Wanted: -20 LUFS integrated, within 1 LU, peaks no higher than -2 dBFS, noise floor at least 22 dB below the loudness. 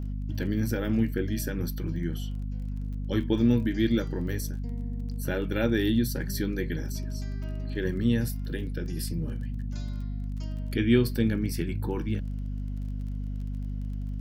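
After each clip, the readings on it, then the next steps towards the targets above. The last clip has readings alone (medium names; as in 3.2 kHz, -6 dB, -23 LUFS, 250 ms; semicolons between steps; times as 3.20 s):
tick rate 22 per s; hum 50 Hz; highest harmonic 250 Hz; hum level -30 dBFS; loudness -30.0 LUFS; peak level -9.0 dBFS; loudness target -20.0 LUFS
-> de-click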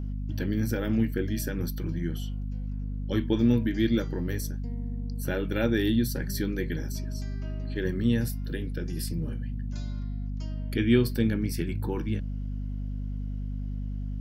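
tick rate 0.070 per s; hum 50 Hz; highest harmonic 250 Hz; hum level -30 dBFS
-> hum notches 50/100/150/200/250 Hz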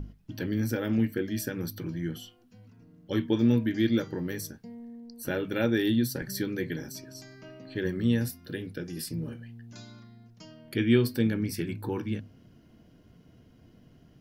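hum not found; loudness -29.5 LUFS; peak level -10.0 dBFS; loudness target -20.0 LUFS
-> trim +9.5 dB; peak limiter -2 dBFS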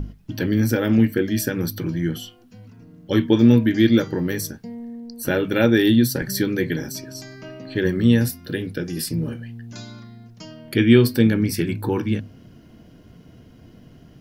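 loudness -20.0 LUFS; peak level -2.0 dBFS; noise floor -49 dBFS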